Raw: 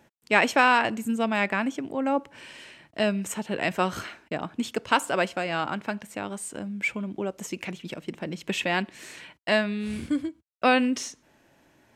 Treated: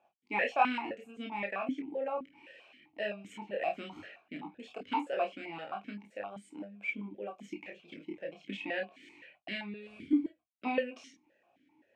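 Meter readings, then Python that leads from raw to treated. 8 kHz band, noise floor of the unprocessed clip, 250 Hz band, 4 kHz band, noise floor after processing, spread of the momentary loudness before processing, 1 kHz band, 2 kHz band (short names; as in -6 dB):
under -25 dB, -64 dBFS, -9.5 dB, -14.0 dB, -74 dBFS, 16 LU, -9.0 dB, -12.0 dB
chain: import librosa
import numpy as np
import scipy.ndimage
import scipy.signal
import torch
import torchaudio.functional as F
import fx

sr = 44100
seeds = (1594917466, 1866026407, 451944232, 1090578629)

y = fx.doubler(x, sr, ms=20.0, db=-6.5)
y = fx.chorus_voices(y, sr, voices=6, hz=0.26, base_ms=30, depth_ms=1.4, mix_pct=40)
y = fx.vowel_held(y, sr, hz=7.7)
y = F.gain(torch.from_numpy(y), 3.5).numpy()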